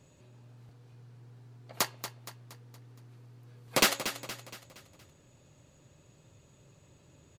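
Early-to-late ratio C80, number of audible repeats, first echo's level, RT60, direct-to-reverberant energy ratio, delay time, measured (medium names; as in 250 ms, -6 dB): no reverb, 4, -11.0 dB, no reverb, no reverb, 234 ms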